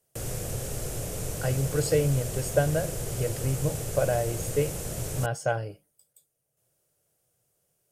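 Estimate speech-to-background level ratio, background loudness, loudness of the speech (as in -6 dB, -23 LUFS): 4.5 dB, -33.5 LUFS, -29.0 LUFS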